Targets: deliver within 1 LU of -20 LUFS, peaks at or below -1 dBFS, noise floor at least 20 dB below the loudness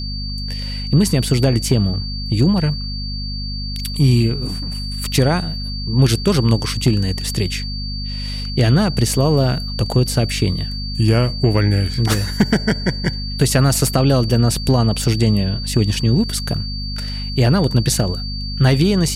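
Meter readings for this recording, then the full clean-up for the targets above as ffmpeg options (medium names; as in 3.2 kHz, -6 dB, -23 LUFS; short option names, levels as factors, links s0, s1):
hum 50 Hz; highest harmonic 250 Hz; hum level -23 dBFS; steady tone 4.6 kHz; tone level -28 dBFS; loudness -18.0 LUFS; peak level -4.5 dBFS; loudness target -20.0 LUFS
-> -af "bandreject=f=50:t=h:w=4,bandreject=f=100:t=h:w=4,bandreject=f=150:t=h:w=4,bandreject=f=200:t=h:w=4,bandreject=f=250:t=h:w=4"
-af "bandreject=f=4600:w=30"
-af "volume=0.794"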